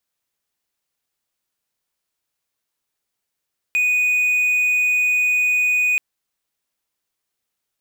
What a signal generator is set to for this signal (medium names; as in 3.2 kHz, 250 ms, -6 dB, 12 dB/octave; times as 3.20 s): tone triangle 2.48 kHz -13 dBFS 2.23 s